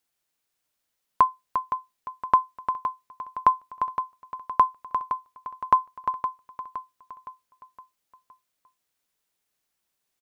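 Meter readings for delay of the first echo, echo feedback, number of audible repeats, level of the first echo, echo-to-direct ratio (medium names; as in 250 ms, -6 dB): 515 ms, 47%, 4, -10.0 dB, -9.0 dB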